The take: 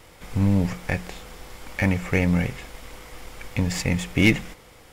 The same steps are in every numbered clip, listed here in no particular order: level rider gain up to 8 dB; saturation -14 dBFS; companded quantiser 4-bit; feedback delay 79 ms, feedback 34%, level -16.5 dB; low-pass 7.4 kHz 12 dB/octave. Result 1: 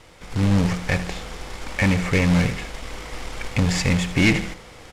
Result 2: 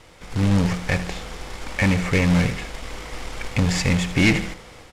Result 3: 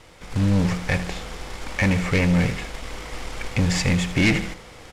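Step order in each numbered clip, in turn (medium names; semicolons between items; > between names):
feedback delay > level rider > saturation > companded quantiser > low-pass; level rider > feedback delay > saturation > companded quantiser > low-pass; feedback delay > level rider > companded quantiser > saturation > low-pass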